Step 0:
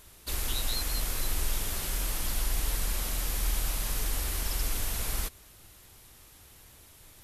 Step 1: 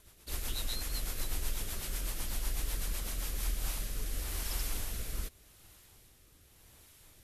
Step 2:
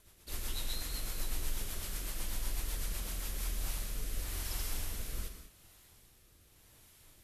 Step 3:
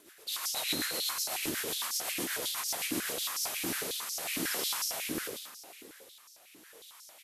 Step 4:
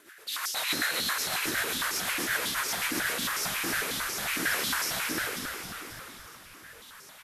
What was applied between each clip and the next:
rotating-speaker cabinet horn 8 Hz, later 0.85 Hz, at 0:02.98; level −3.5 dB
reverb whose tail is shaped and stops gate 230 ms flat, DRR 5 dB; level −3 dB
echo with shifted repeats 108 ms, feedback 55%, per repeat +73 Hz, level −6 dB; four-comb reverb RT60 3.2 s, combs from 33 ms, DRR 19 dB; high-pass on a step sequencer 11 Hz 310–5,400 Hz; level +5.5 dB
parametric band 1,600 Hz +11 dB 1.1 octaves; on a send: echo with shifted repeats 270 ms, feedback 60%, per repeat −66 Hz, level −6 dB

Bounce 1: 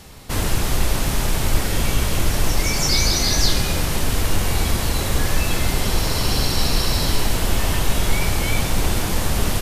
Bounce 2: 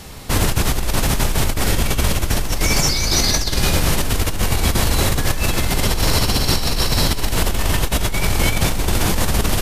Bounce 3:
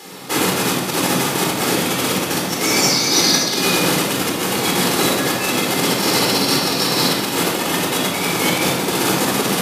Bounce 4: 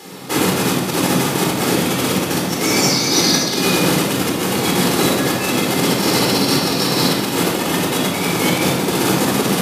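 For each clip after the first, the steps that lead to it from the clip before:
compressor whose output falls as the input rises −20 dBFS, ratio −1; level +3.5 dB
high-pass filter 210 Hz 24 dB per octave; convolution reverb RT60 0.90 s, pre-delay 25 ms, DRR −1 dB; level −1 dB
low-shelf EQ 410 Hz +6 dB; level −1 dB

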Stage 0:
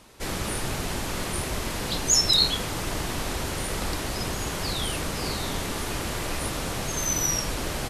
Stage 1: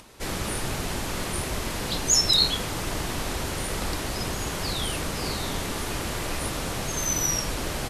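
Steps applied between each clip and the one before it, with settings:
upward compression, threshold −46 dBFS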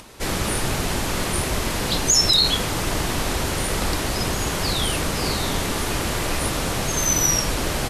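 boost into a limiter +12.5 dB
level −6.5 dB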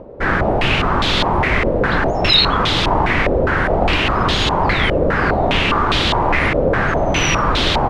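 low-pass on a step sequencer 4.9 Hz 540–3,600 Hz
level +6 dB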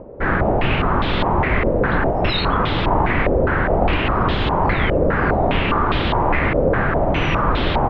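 high-frequency loss of the air 430 metres

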